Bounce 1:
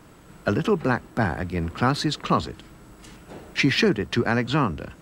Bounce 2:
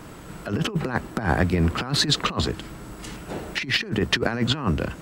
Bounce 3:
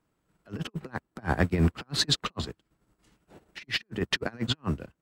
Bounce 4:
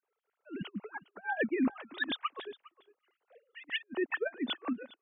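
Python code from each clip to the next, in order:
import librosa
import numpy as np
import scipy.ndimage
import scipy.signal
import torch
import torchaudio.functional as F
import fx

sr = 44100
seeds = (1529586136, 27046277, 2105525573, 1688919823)

y1 = fx.over_compress(x, sr, threshold_db=-26.0, ratio=-0.5)
y1 = y1 * librosa.db_to_amplitude(4.0)
y2 = fx.transient(y1, sr, attack_db=-3, sustain_db=-7)
y2 = fx.upward_expand(y2, sr, threshold_db=-41.0, expansion=2.5)
y3 = fx.sine_speech(y2, sr)
y3 = y3 + 10.0 ** (-21.0 / 20.0) * np.pad(y3, (int(408 * sr / 1000.0), 0))[:len(y3)]
y3 = y3 * librosa.db_to_amplitude(-6.0)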